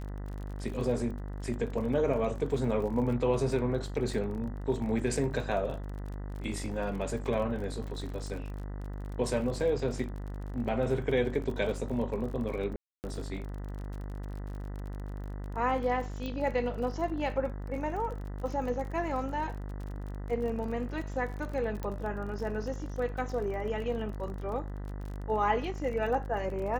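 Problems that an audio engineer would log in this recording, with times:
mains buzz 50 Hz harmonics 40 −38 dBFS
surface crackle 41 per second −39 dBFS
0:04.11: drop-out 2.5 ms
0:12.76–0:13.04: drop-out 279 ms
0:16.26: click −25 dBFS
0:21.83: click −23 dBFS

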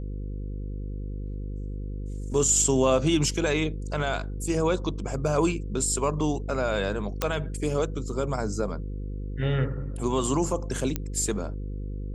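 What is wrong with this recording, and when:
mains buzz 50 Hz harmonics 10 −33 dBFS
0:07.22: click −9 dBFS
0:10.96: click −13 dBFS

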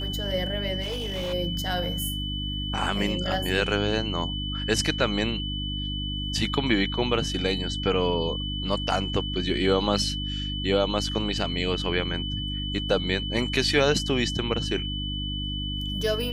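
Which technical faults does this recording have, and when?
mains hum 50 Hz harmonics 6 −32 dBFS
whistle 3,000 Hz −32 dBFS
0:00.81–0:01.34: clipping −26.5 dBFS

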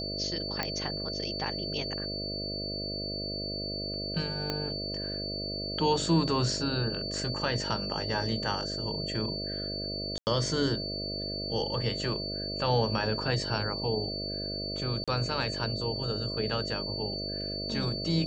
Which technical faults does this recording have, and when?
mains buzz 50 Hz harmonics 13 −38 dBFS
whistle 4,500 Hz −35 dBFS
0:00.63: click −15 dBFS
0:04.50: click −16 dBFS
0:10.18–0:10.27: drop-out 89 ms
0:15.04–0:15.08: drop-out 36 ms

